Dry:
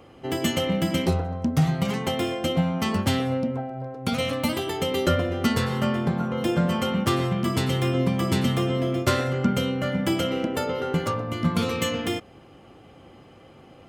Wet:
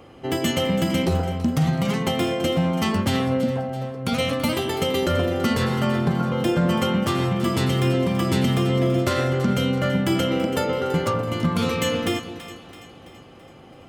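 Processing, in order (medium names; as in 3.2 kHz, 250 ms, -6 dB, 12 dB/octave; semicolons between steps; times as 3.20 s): peak limiter -15 dBFS, peak gain reduction 7 dB; on a send: two-band feedback delay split 730 Hz, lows 204 ms, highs 332 ms, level -12.5 dB; on the sum: trim +3 dB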